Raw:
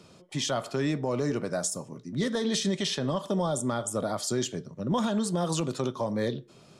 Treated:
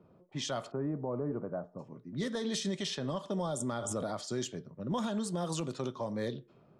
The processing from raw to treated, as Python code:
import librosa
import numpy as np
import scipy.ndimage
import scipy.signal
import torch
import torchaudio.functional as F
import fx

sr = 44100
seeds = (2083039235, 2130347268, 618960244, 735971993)

y = fx.env_lowpass(x, sr, base_hz=930.0, full_db=-24.0)
y = fx.lowpass(y, sr, hz=1200.0, slope=24, at=(0.7, 1.78), fade=0.02)
y = fx.pre_swell(y, sr, db_per_s=38.0, at=(3.6, 4.25))
y = y * librosa.db_to_amplitude(-6.5)